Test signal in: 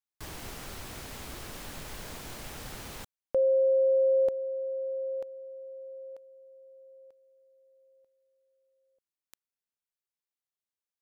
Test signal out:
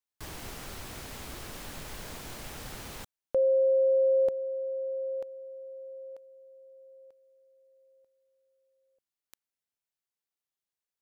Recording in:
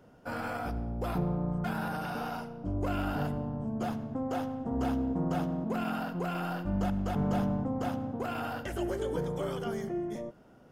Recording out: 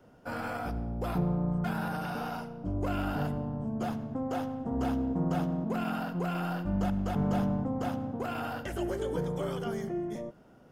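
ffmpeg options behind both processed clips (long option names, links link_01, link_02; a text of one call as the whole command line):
ffmpeg -i in.wav -af "adynamicequalizer=threshold=0.00355:dfrequency=170:dqfactor=4.6:tfrequency=170:tqfactor=4.6:attack=5:release=100:ratio=0.375:range=1.5:mode=boostabove:tftype=bell" out.wav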